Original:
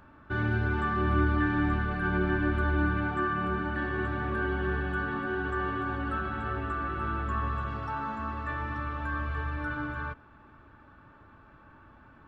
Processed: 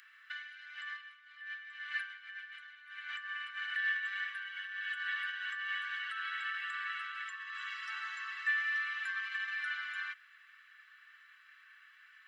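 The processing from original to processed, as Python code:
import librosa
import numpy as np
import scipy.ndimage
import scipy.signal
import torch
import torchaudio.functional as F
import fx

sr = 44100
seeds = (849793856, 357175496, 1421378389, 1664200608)

y = fx.over_compress(x, sr, threshold_db=-32.0, ratio=-0.5)
y = scipy.signal.sosfilt(scipy.signal.butter(8, 1600.0, 'highpass', fs=sr, output='sos'), y)
y = y + 0.5 * np.pad(y, (int(1.0 * sr / 1000.0), 0))[:len(y)]
y = y * librosa.db_to_amplitude(5.5)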